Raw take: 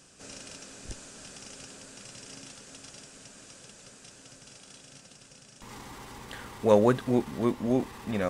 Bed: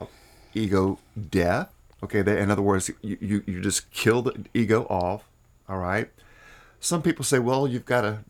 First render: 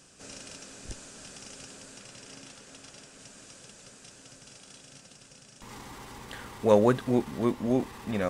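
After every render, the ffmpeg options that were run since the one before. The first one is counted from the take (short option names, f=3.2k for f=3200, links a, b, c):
-filter_complex "[0:a]asettb=1/sr,asplit=3[a][b][c];[a]atrim=end=1.994[d];[b]atrim=start=1.99:end=3.19,asetpts=PTS-STARTPTS,afade=t=in:d=0.004:c=qsin,afade=t=out:st=1.196:d=0.004:c=qsin,bass=f=250:g=-2,treble=f=4k:g=-3[e];[c]atrim=start=3.186[f];[d][e]acrossfade=d=0.004:c1=hsin:c2=qsin[g];[g][f]acrossfade=d=0.004:c1=qsin:c2=hsin"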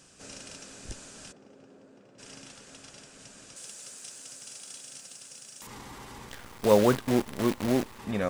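-filter_complex "[0:a]asplit=3[a][b][c];[a]afade=t=out:st=1.31:d=0.02[d];[b]bandpass=f=360:t=q:w=1,afade=t=in:st=1.31:d=0.02,afade=t=out:st=2.18:d=0.02[e];[c]afade=t=in:st=2.18:d=0.02[f];[d][e][f]amix=inputs=3:normalize=0,asettb=1/sr,asplit=3[g][h][i];[g]atrim=end=3.564[j];[h]atrim=start=3.56:end=5.67,asetpts=PTS-STARTPTS,afade=t=in:d=0.004:c=qsin,afade=t=out:st=2.106:d=0.004:c=qsin,aemphasis=mode=production:type=bsi[k];[i]atrim=start=5.666[l];[j][k]acrossfade=d=0.004:c1=hsin:c2=qsin[m];[m][l]acrossfade=d=0.004:c1=qsin:c2=hsin,asettb=1/sr,asplit=3[n][o][p];[n]atrim=end=6.294[q];[o]atrim=start=6.29:end=7.99,asetpts=PTS-STARTPTS,afade=t=in:d=0.004:c=qsin,afade=t=out:st=1.696:d=0.004:c=qsin,acrusher=bits=6:dc=4:mix=0:aa=0.000001[r];[p]atrim=start=7.986[s];[q][r]acrossfade=d=0.004:c1=hsin:c2=qsin[t];[t][s]acrossfade=d=0.004:c1=qsin:c2=hsin"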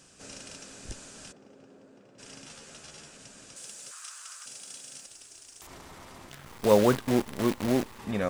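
-filter_complex "[0:a]asettb=1/sr,asplit=3[a][b][c];[a]atrim=end=2.464[d];[b]atrim=start=2.46:end=3.17,asetpts=PTS-STARTPTS,afade=t=in:d=0.004:c=qsin,afade=t=out:st=0.706:d=0.004:c=qsin,asplit=2[e][f];[f]adelay=13,volume=-3dB[g];[e][g]amix=inputs=2:normalize=0,atrim=end_sample=31311[h];[c]atrim=start=3.166[i];[d][h]acrossfade=d=0.004:c1=hsin:c2=qsin[j];[j][i]acrossfade=d=0.004:c1=qsin:c2=hsin,asettb=1/sr,asplit=3[k][l][m];[k]atrim=end=3.914[n];[l]atrim=start=3.91:end=4.46,asetpts=PTS-STARTPTS,afade=t=in:d=0.004:c=qsin,afade=t=out:st=0.546:d=0.004:c=qsin,highpass=f=1.2k:t=q:w=4.9[o];[m]atrim=start=4.456[p];[n][o]acrossfade=d=0.004:c1=hsin:c2=qsin[q];[q][p]acrossfade=d=0.004:c1=qsin:c2=hsin,asettb=1/sr,asplit=3[r][s][t];[r]atrim=end=5.064[u];[s]atrim=start=5.06:end=6.47,asetpts=PTS-STARTPTS,afade=t=in:d=0.004:c=qsin,afade=t=out:st=1.406:d=0.004:c=qsin,aeval=exprs='val(0)*sin(2*PI*140*n/s)':c=same[v];[t]atrim=start=6.466[w];[u][v]acrossfade=d=0.004:c1=hsin:c2=qsin[x];[x][w]acrossfade=d=0.004:c1=qsin:c2=hsin"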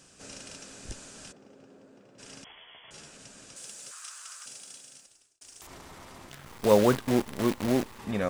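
-filter_complex "[0:a]asettb=1/sr,asplit=3[a][b][c];[a]atrim=end=2.444[d];[b]atrim=start=2.44:end=2.91,asetpts=PTS-STARTPTS,afade=t=in:d=0.004:c=qsin,afade=t=out:st=0.466:d=0.004:c=qsin,lowpass=f=3k:t=q:w=0.5098,lowpass=f=3k:t=q:w=0.6013,lowpass=f=3k:t=q:w=0.9,lowpass=f=3k:t=q:w=2.563,afreqshift=-3500[e];[c]atrim=start=2.906[f];[d][e]acrossfade=d=0.004:c1=hsin:c2=qsin[g];[g][f]acrossfade=d=0.004:c1=qsin:c2=hsin,asplit=2[h][i];[h]atrim=end=5.41,asetpts=PTS-STARTPTS,afade=t=out:st=4.46:d=0.95[j];[i]atrim=start=5.41,asetpts=PTS-STARTPTS,afade=t=in:d=0.004:c=hsin[k];[j][k]concat=n=2:v=0:a=1"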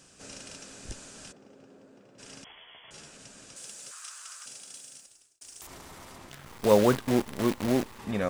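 -filter_complex "[0:a]asettb=1/sr,asplit=3[a][b][c];[a]atrim=end=4.744[d];[b]atrim=start=4.74:end=6.16,asetpts=PTS-STARTPTS,afade=t=in:d=0.004:c=qsin,afade=t=out:st=1.416:d=0.004:c=qsin,highshelf=f=7.4k:g=6[e];[c]atrim=start=6.156[f];[d][e]acrossfade=d=0.004:c1=hsin:c2=qsin[g];[g][f]acrossfade=d=0.004:c1=qsin:c2=hsin"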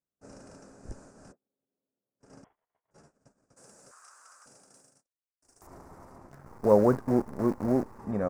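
-af "agate=range=-36dB:threshold=-47dB:ratio=16:detection=peak,firequalizer=gain_entry='entry(800,0);entry(1400,-5);entry(3200,-29);entry(5100,-14)':delay=0.05:min_phase=1"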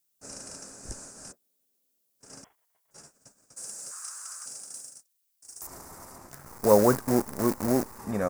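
-af "crystalizer=i=8:c=0"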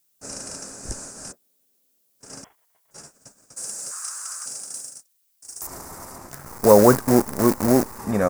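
-af "volume=7.5dB,alimiter=limit=-1dB:level=0:latency=1"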